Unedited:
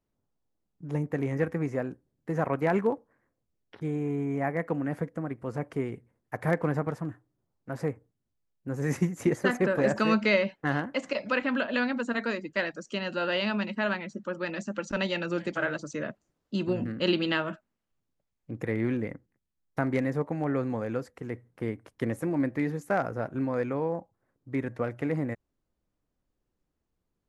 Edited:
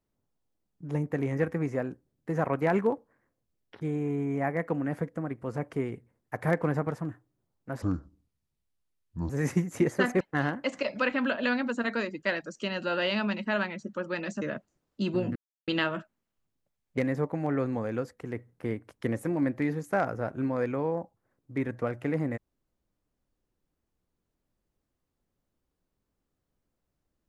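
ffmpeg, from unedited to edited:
ffmpeg -i in.wav -filter_complex "[0:a]asplit=8[link_01][link_02][link_03][link_04][link_05][link_06][link_07][link_08];[link_01]atrim=end=7.824[link_09];[link_02]atrim=start=7.82:end=8.75,asetpts=PTS-STARTPTS,asetrate=27783,aresample=44100[link_10];[link_03]atrim=start=8.746:end=9.662[link_11];[link_04]atrim=start=10.508:end=14.722[link_12];[link_05]atrim=start=15.948:end=16.89,asetpts=PTS-STARTPTS,afade=type=out:start_time=0.938:duration=0.004:curve=hsin[link_13];[link_06]atrim=start=16.89:end=17.21,asetpts=PTS-STARTPTS,volume=0[link_14];[link_07]atrim=start=17.21:end=18.512,asetpts=PTS-STARTPTS,afade=type=in:duration=0.004:curve=hsin[link_15];[link_08]atrim=start=19.948[link_16];[link_09][link_10]acrossfade=duration=0.004:curve1=hsin:curve2=hsin[link_17];[link_17][link_11]acrossfade=duration=0.004:curve1=hsin:curve2=hsin[link_18];[link_18][link_12]acrossfade=duration=0.004:curve1=hsin:curve2=hsin[link_19];[link_13][link_14][link_15]concat=n=3:v=0:a=1[link_20];[link_19][link_20]acrossfade=duration=0.004:curve1=hsin:curve2=hsin[link_21];[link_21][link_16]acrossfade=duration=0.004:curve1=hsin:curve2=hsin" out.wav

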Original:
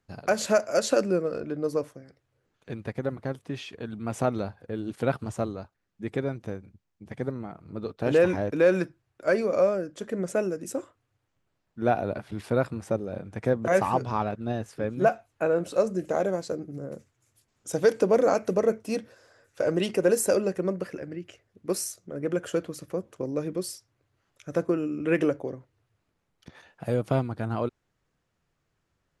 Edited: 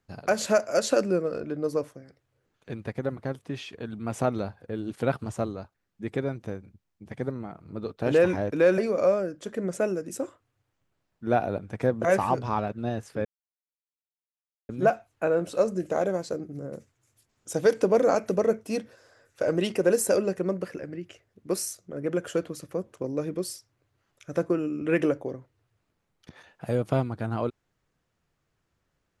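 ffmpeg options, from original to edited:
ffmpeg -i in.wav -filter_complex "[0:a]asplit=4[link_01][link_02][link_03][link_04];[link_01]atrim=end=8.782[link_05];[link_02]atrim=start=9.328:end=12.132[link_06];[link_03]atrim=start=13.208:end=14.88,asetpts=PTS-STARTPTS,afade=type=out:start_time=1.668:duration=0.004:curve=hsin,apad=pad_dur=1.44[link_07];[link_04]atrim=start=14.88,asetpts=PTS-STARTPTS,afade=type=in:duration=0.004:curve=hsin[link_08];[link_05][link_06]acrossfade=duration=0.004:curve1=hsin:curve2=hsin[link_09];[link_07][link_08]concat=n=2:v=0:a=1[link_10];[link_09][link_10]acrossfade=duration=0.004:curve1=hsin:curve2=hsin" out.wav

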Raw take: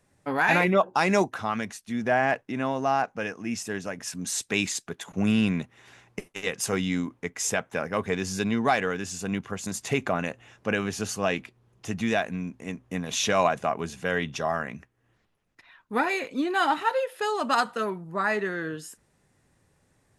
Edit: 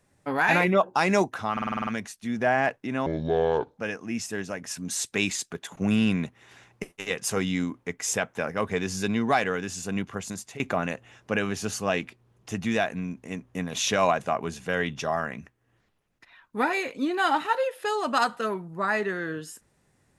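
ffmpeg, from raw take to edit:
ffmpeg -i in.wav -filter_complex "[0:a]asplit=11[link_01][link_02][link_03][link_04][link_05][link_06][link_07][link_08][link_09][link_10][link_11];[link_01]atrim=end=1.572[link_12];[link_02]atrim=start=1.518:end=1.572[link_13];[link_03]atrim=start=1.518:end=1.572[link_14];[link_04]atrim=start=1.518:end=1.572[link_15];[link_05]atrim=start=1.518:end=1.572[link_16];[link_06]atrim=start=1.518:end=1.572[link_17];[link_07]atrim=start=1.518:end=1.572[link_18];[link_08]atrim=start=1.518:end=2.714[link_19];[link_09]atrim=start=2.71:end=3.14,asetpts=PTS-STARTPTS,asetrate=26460,aresample=44100[link_20];[link_10]atrim=start=3.136:end=9.96,asetpts=PTS-STARTPTS,afade=type=out:start_time=6.444:duration=0.38:silence=0.11885[link_21];[link_11]atrim=start=9.96,asetpts=PTS-STARTPTS,afade=type=in:duration=0.004:curve=hsin:silence=0.11885[link_22];[link_12][link_13]acrossfade=duration=0.004:curve1=hsin:curve2=hsin[link_23];[link_23][link_14]acrossfade=duration=0.004:curve1=hsin:curve2=hsin[link_24];[link_24][link_15]acrossfade=duration=0.004:curve1=hsin:curve2=hsin[link_25];[link_25][link_16]acrossfade=duration=0.004:curve1=hsin:curve2=hsin[link_26];[link_26][link_17]acrossfade=duration=0.004:curve1=hsin:curve2=hsin[link_27];[link_27][link_18]acrossfade=duration=0.004:curve1=hsin:curve2=hsin[link_28];[link_28][link_19]acrossfade=duration=0.004:curve1=hsin:curve2=hsin[link_29];[link_29][link_20]acrossfade=duration=0.004:curve1=hsin:curve2=hsin[link_30];[link_21][link_22]concat=n=2:v=0:a=1[link_31];[link_30][link_31]acrossfade=duration=0.004:curve1=hsin:curve2=hsin" out.wav

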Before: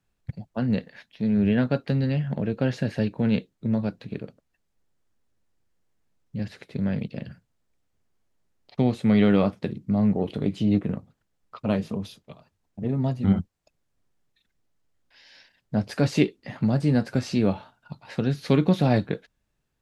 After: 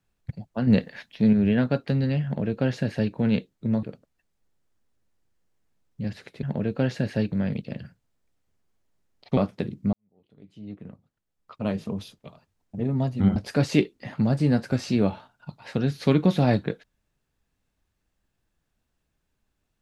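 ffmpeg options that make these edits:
ffmpeg -i in.wav -filter_complex "[0:a]asplit=9[link_01][link_02][link_03][link_04][link_05][link_06][link_07][link_08][link_09];[link_01]atrim=end=0.672[link_10];[link_02]atrim=start=0.668:end=1.332,asetpts=PTS-STARTPTS,volume=5.5dB[link_11];[link_03]atrim=start=1.328:end=3.832[link_12];[link_04]atrim=start=4.178:end=6.782[link_13];[link_05]atrim=start=2.248:end=3.142[link_14];[link_06]atrim=start=6.778:end=8.832[link_15];[link_07]atrim=start=9.408:end=9.97,asetpts=PTS-STARTPTS,afade=type=out:start_time=0.558:duration=0.004:curve=hsin[link_16];[link_08]atrim=start=9.97:end=13.402,asetpts=PTS-STARTPTS,afade=type=in:duration=2.08:curve=qua[link_17];[link_09]atrim=start=15.788[link_18];[link_10][link_11]acrossfade=duration=0.004:curve1=hsin:curve2=hsin[link_19];[link_19][link_12]acrossfade=duration=0.004:curve1=hsin:curve2=hsin[link_20];[link_20][link_13]acrossfade=duration=0.004:curve1=hsin:curve2=hsin[link_21];[link_21][link_14]acrossfade=duration=0.004:curve1=hsin:curve2=hsin[link_22];[link_22][link_15]acrossfade=duration=0.004:curve1=hsin:curve2=hsin[link_23];[link_16][link_17]concat=n=2:v=0:a=1[link_24];[link_23][link_24]acrossfade=duration=0.004:curve1=hsin:curve2=hsin[link_25];[link_25][link_18]acrossfade=duration=0.004:curve1=hsin:curve2=hsin" out.wav

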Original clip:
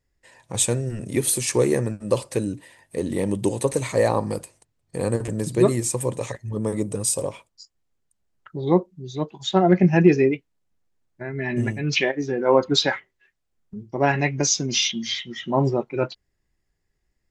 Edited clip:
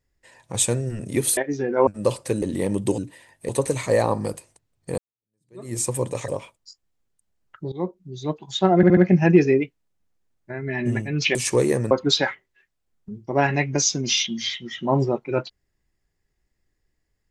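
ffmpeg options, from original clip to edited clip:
ffmpeg -i in.wav -filter_complex "[0:a]asplit=14[link_01][link_02][link_03][link_04][link_05][link_06][link_07][link_08][link_09][link_10][link_11][link_12][link_13][link_14];[link_01]atrim=end=1.372[link_15];[link_02]atrim=start=12.058:end=12.562[link_16];[link_03]atrim=start=1.928:end=2.482[link_17];[link_04]atrim=start=2.988:end=3.552[link_18];[link_05]atrim=start=2.478:end=2.992[link_19];[link_06]atrim=start=3.548:end=5.04,asetpts=PTS-STARTPTS,afade=type=out:start_time=1.488:duration=0.004:curve=hsin[link_20];[link_07]atrim=start=5.04:end=6.342,asetpts=PTS-STARTPTS,afade=type=in:duration=0.79:curve=exp[link_21];[link_08]atrim=start=7.198:end=8.64,asetpts=PTS-STARTPTS,afade=type=out:start_time=1.438:duration=0.004:curve=hsin:silence=0.133352[link_22];[link_09]atrim=start=8.64:end=9.752,asetpts=PTS-STARTPTS,afade=type=in:duration=0.43:silence=0.133352[link_23];[link_10]atrim=start=9.678:end=9.752[link_24];[link_11]atrim=start=9.678:end=9.752[link_25];[link_12]atrim=start=9.678:end=12.062[link_26];[link_13]atrim=start=1.368:end=1.932[link_27];[link_14]atrim=start=12.558[link_28];[link_15][link_16]acrossfade=duration=0.004:curve1=hsin:curve2=hsin[link_29];[link_29][link_17]acrossfade=duration=0.004:curve1=hsin:curve2=hsin[link_30];[link_30][link_18]acrossfade=duration=0.004:curve1=hsin:curve2=hsin[link_31];[link_31][link_19]acrossfade=duration=0.004:curve1=hsin:curve2=hsin[link_32];[link_20][link_21]concat=n=2:v=0:a=1[link_33];[link_32][link_33]acrossfade=duration=0.004:curve1=hsin:curve2=hsin[link_34];[link_22][link_23]concat=n=2:v=0:a=1[link_35];[link_34][link_35]acrossfade=duration=0.004:curve1=hsin:curve2=hsin[link_36];[link_36][link_24]acrossfade=duration=0.004:curve1=hsin:curve2=hsin[link_37];[link_37][link_25]acrossfade=duration=0.004:curve1=hsin:curve2=hsin[link_38];[link_38][link_26]acrossfade=duration=0.004:curve1=hsin:curve2=hsin[link_39];[link_39][link_27]acrossfade=duration=0.004:curve1=hsin:curve2=hsin[link_40];[link_40][link_28]acrossfade=duration=0.004:curve1=hsin:curve2=hsin" out.wav

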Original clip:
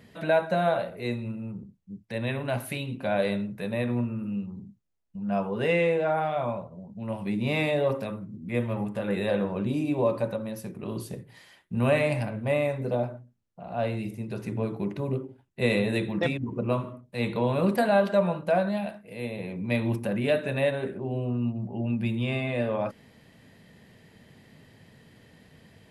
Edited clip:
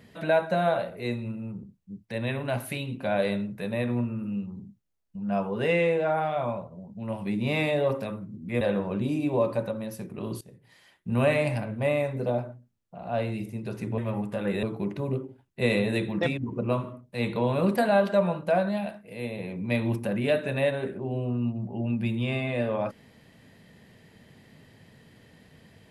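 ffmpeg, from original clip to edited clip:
ffmpeg -i in.wav -filter_complex "[0:a]asplit=5[link_01][link_02][link_03][link_04][link_05];[link_01]atrim=end=8.612[link_06];[link_02]atrim=start=9.258:end=11.06,asetpts=PTS-STARTPTS,afade=type=out:start_time=1.798:duration=0.004:curve=hsin:silence=0.11885[link_07];[link_03]atrim=start=11.06:end=14.632,asetpts=PTS-STARTPTS,afade=type=in:duration=0.72:silence=0.11885[link_08];[link_04]atrim=start=8.608:end=9.262[link_09];[link_05]atrim=start=14.628[link_10];[link_07][link_08]concat=n=2:v=0:a=1[link_11];[link_06][link_11]acrossfade=duration=0.004:curve1=hsin:curve2=hsin[link_12];[link_12][link_09]acrossfade=duration=0.004:curve1=hsin:curve2=hsin[link_13];[link_13][link_10]acrossfade=duration=0.004:curve1=hsin:curve2=hsin" out.wav

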